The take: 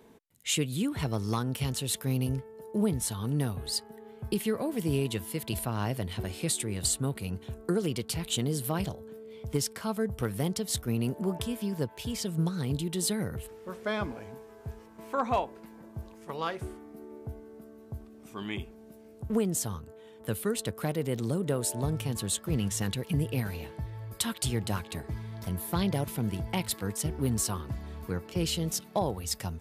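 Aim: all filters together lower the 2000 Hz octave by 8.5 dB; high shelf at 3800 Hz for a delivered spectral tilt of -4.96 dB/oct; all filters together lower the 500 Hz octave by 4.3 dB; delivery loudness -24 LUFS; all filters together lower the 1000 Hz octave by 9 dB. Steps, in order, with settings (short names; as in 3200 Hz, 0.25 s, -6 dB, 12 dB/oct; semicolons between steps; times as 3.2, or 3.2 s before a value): bell 500 Hz -3 dB; bell 1000 Hz -9 dB; bell 2000 Hz -7.5 dB; high shelf 3800 Hz -3.5 dB; gain +10 dB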